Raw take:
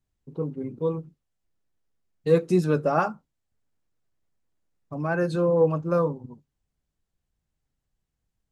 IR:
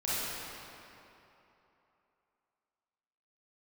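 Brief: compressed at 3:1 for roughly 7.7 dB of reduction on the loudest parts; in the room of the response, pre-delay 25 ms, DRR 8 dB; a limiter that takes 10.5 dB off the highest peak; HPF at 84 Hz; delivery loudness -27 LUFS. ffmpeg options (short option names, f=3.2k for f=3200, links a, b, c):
-filter_complex "[0:a]highpass=84,acompressor=threshold=-25dB:ratio=3,alimiter=level_in=1dB:limit=-24dB:level=0:latency=1,volume=-1dB,asplit=2[a][b];[1:a]atrim=start_sample=2205,adelay=25[c];[b][c]afir=irnorm=-1:irlink=0,volume=-16.5dB[d];[a][d]amix=inputs=2:normalize=0,volume=8dB"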